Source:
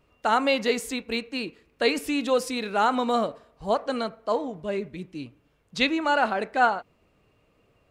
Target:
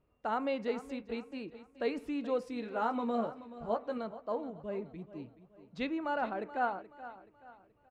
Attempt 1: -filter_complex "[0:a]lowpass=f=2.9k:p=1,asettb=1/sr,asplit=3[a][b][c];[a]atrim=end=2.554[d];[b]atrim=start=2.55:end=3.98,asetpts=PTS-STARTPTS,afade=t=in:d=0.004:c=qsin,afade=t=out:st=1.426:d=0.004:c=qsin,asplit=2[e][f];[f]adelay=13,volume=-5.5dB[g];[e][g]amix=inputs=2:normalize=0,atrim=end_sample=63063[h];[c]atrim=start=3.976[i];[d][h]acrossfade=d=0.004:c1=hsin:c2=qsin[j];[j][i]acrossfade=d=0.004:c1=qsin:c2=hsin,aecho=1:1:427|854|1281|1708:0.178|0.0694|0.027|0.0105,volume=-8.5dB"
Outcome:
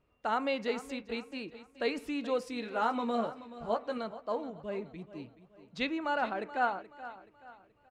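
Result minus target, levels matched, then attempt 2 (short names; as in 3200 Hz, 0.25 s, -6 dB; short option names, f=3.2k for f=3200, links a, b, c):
4000 Hz band +6.0 dB
-filter_complex "[0:a]lowpass=f=950:p=1,asettb=1/sr,asplit=3[a][b][c];[a]atrim=end=2.554[d];[b]atrim=start=2.55:end=3.98,asetpts=PTS-STARTPTS,afade=t=in:d=0.004:c=qsin,afade=t=out:st=1.426:d=0.004:c=qsin,asplit=2[e][f];[f]adelay=13,volume=-5.5dB[g];[e][g]amix=inputs=2:normalize=0,atrim=end_sample=63063[h];[c]atrim=start=3.976[i];[d][h]acrossfade=d=0.004:c1=hsin:c2=qsin[j];[j][i]acrossfade=d=0.004:c1=qsin:c2=hsin,aecho=1:1:427|854|1281|1708:0.178|0.0694|0.027|0.0105,volume=-8.5dB"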